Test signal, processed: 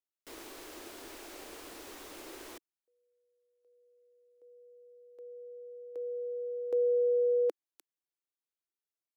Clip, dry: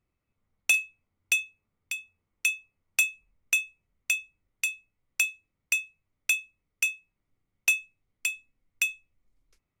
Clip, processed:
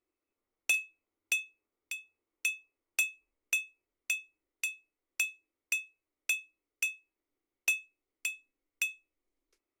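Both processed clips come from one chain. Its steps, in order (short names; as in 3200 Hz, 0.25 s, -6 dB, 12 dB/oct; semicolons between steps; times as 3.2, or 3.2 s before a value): resonant low shelf 230 Hz -12.5 dB, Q 3; gain -6 dB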